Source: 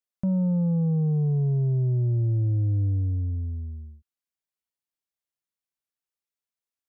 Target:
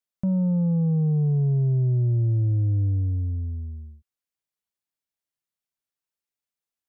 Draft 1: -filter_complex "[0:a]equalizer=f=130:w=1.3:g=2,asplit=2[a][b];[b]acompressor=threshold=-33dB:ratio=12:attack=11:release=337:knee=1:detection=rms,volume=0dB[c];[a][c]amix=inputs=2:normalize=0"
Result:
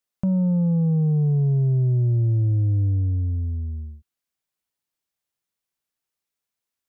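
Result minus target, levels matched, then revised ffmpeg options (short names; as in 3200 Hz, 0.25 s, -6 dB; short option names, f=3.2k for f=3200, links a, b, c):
compressor: peak gain reduction +13 dB
-af "equalizer=f=130:w=1.3:g=2"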